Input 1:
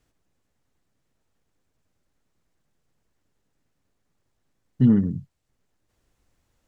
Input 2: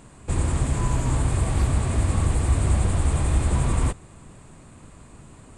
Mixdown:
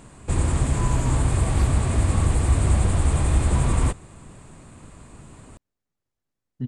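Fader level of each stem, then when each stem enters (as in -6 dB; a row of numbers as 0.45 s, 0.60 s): -11.0 dB, +1.5 dB; 1.80 s, 0.00 s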